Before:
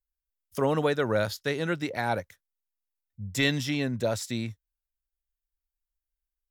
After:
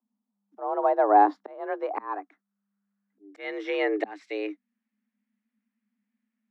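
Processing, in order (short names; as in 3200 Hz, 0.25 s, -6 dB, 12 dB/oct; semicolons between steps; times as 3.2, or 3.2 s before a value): auto swell 0.738 s; low-pass sweep 750 Hz -> 1900 Hz, 1.01–4.1; frequency shift +200 Hz; gain +6.5 dB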